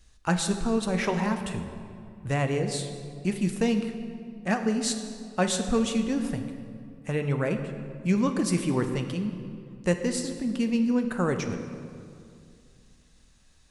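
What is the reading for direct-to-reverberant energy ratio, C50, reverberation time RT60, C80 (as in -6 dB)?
6.0 dB, 8.0 dB, 2.4 s, 9.0 dB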